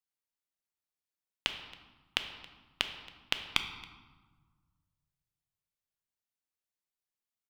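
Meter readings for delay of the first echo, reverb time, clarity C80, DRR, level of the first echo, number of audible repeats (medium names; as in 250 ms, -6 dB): 274 ms, 1.3 s, 10.5 dB, 7.0 dB, -22.5 dB, 1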